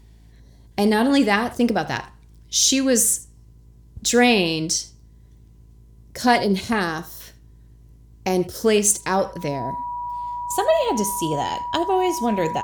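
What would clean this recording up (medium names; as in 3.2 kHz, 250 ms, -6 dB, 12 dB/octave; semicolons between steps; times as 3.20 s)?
de-hum 54.8 Hz, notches 8; band-stop 970 Hz, Q 30; inverse comb 79 ms -19.5 dB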